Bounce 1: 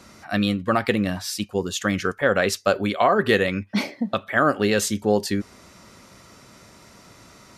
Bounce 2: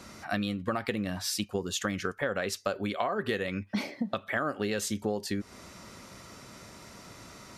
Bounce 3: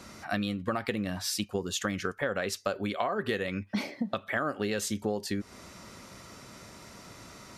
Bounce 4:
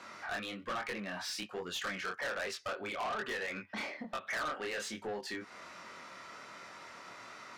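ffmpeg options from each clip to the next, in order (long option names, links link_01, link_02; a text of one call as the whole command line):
ffmpeg -i in.wav -af "acompressor=threshold=-28dB:ratio=6" out.wav
ffmpeg -i in.wav -af anull out.wav
ffmpeg -i in.wav -af "bandpass=frequency=1500:width_type=q:width=0.8:csg=0,flanger=delay=22.5:depth=4.9:speed=1.2,asoftclip=type=tanh:threshold=-40dB,volume=7dB" out.wav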